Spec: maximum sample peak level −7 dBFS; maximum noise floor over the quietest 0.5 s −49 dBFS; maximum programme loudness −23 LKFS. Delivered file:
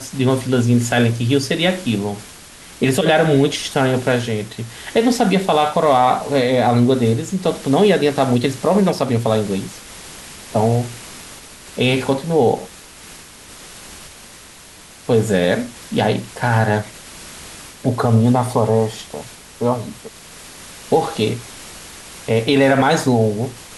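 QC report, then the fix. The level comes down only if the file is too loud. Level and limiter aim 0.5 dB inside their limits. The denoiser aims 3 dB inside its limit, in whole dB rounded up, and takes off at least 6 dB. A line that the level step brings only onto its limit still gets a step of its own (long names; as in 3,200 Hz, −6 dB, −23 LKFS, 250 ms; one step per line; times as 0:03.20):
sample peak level −4.0 dBFS: out of spec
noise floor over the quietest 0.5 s −41 dBFS: out of spec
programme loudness −17.5 LKFS: out of spec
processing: broadband denoise 6 dB, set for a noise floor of −41 dBFS
level −6 dB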